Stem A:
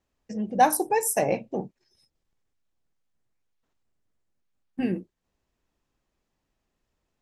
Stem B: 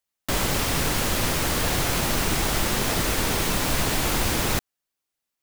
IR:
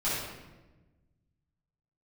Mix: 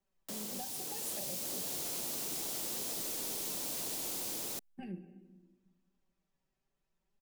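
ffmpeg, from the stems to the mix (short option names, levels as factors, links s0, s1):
-filter_complex "[0:a]aecho=1:1:5.2:0.52,acompressor=threshold=0.02:ratio=3,flanger=delay=4.8:depth=3.2:regen=36:speed=0.84:shape=triangular,volume=0.531,asplit=2[s0][s1];[s1]volume=0.119[s2];[1:a]highpass=390,equalizer=f=1600:t=o:w=2.4:g=-14.5,dynaudnorm=f=240:g=9:m=1.58,volume=0.266[s3];[2:a]atrim=start_sample=2205[s4];[s2][s4]afir=irnorm=-1:irlink=0[s5];[s0][s3][s5]amix=inputs=3:normalize=0,acrossover=split=220|3000[s6][s7][s8];[s7]acompressor=threshold=0.00501:ratio=6[s9];[s6][s9][s8]amix=inputs=3:normalize=0"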